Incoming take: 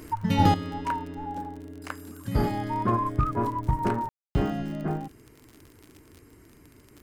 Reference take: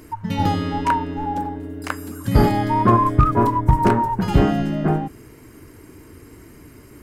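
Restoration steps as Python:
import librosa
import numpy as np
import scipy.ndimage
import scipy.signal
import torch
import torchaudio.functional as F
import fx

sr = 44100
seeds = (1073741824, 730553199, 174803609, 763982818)

y = fx.fix_declick_ar(x, sr, threshold=6.5)
y = fx.fix_ambience(y, sr, seeds[0], print_start_s=6.44, print_end_s=6.94, start_s=4.09, end_s=4.35)
y = fx.fix_level(y, sr, at_s=0.54, step_db=10.0)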